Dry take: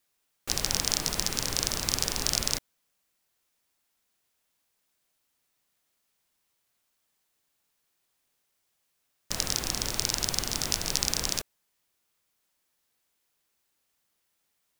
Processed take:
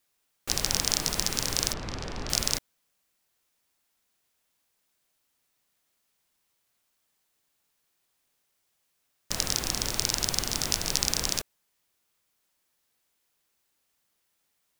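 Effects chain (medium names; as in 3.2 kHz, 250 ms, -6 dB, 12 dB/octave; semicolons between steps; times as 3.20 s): 1.73–2.30 s: tape spacing loss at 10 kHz 28 dB; trim +1 dB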